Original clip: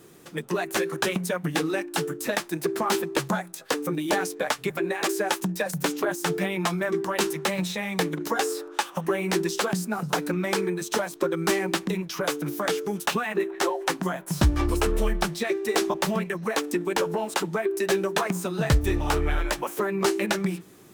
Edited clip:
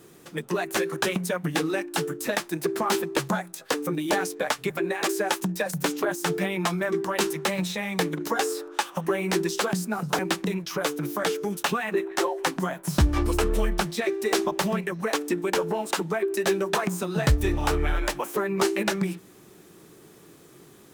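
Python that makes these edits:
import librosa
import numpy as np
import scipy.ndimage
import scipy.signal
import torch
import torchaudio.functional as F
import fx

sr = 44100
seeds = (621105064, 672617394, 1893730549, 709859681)

y = fx.edit(x, sr, fx.cut(start_s=10.19, length_s=1.43), tone=tone)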